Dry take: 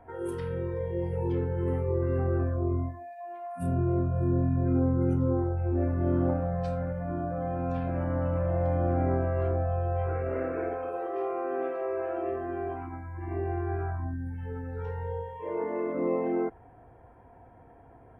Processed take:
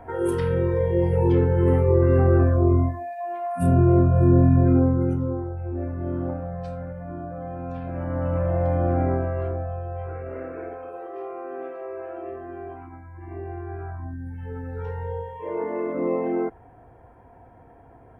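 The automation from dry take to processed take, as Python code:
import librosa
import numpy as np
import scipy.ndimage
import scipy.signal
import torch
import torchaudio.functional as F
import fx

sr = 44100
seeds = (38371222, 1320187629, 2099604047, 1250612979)

y = fx.gain(x, sr, db=fx.line((4.58, 10.0), (5.41, -2.0), (7.8, -2.0), (8.36, 4.5), (9.0, 4.5), (9.85, -3.0), (13.73, -3.0), (14.66, 3.5)))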